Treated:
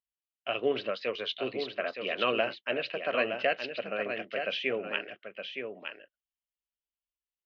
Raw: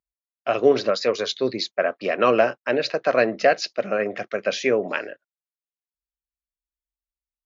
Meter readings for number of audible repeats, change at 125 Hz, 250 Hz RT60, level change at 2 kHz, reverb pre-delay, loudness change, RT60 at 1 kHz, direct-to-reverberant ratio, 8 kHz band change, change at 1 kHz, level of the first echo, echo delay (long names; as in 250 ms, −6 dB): 1, −11.5 dB, no reverb audible, −6.0 dB, no reverb audible, −10.0 dB, no reverb audible, no reverb audible, can't be measured, −10.5 dB, −7.0 dB, 917 ms